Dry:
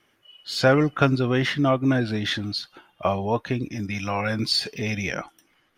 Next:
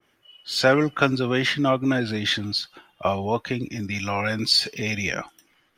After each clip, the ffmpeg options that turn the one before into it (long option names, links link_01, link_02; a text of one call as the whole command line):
ffmpeg -i in.wav -filter_complex "[0:a]acrossover=split=190|2900[link_01][link_02][link_03];[link_01]alimiter=level_in=4.5dB:limit=-24dB:level=0:latency=1,volume=-4.5dB[link_04];[link_04][link_02][link_03]amix=inputs=3:normalize=0,adynamicequalizer=threshold=0.0141:dfrequency=1700:dqfactor=0.7:tfrequency=1700:tqfactor=0.7:attack=5:release=100:ratio=0.375:range=2:mode=boostabove:tftype=highshelf" out.wav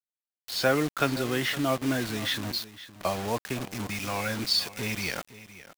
ffmpeg -i in.wav -af "acrusher=bits=4:mix=0:aa=0.000001,aecho=1:1:514:0.158,volume=-6dB" out.wav